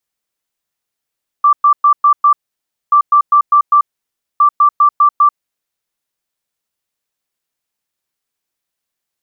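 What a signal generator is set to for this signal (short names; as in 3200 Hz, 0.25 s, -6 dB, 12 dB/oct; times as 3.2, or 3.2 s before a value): beep pattern sine 1170 Hz, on 0.09 s, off 0.11 s, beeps 5, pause 0.59 s, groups 3, -5 dBFS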